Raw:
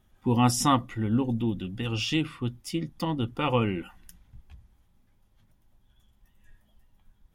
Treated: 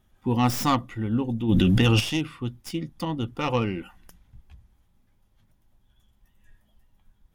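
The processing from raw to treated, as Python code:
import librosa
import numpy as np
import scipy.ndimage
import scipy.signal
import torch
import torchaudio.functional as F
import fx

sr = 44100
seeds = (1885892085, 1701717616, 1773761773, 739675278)

y = fx.tracing_dist(x, sr, depth_ms=0.11)
y = fx.env_flatten(y, sr, amount_pct=100, at=(1.48, 1.99), fade=0.02)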